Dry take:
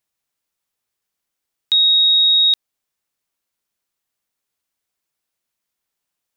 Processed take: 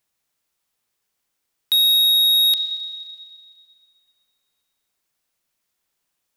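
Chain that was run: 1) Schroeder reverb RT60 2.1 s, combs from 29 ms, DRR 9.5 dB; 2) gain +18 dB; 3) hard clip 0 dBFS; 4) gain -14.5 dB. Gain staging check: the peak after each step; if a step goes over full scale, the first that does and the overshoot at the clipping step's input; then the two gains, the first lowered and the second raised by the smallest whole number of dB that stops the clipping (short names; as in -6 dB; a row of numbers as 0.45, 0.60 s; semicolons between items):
-9.5, +8.5, 0.0, -14.5 dBFS; step 2, 8.5 dB; step 2 +9 dB, step 4 -5.5 dB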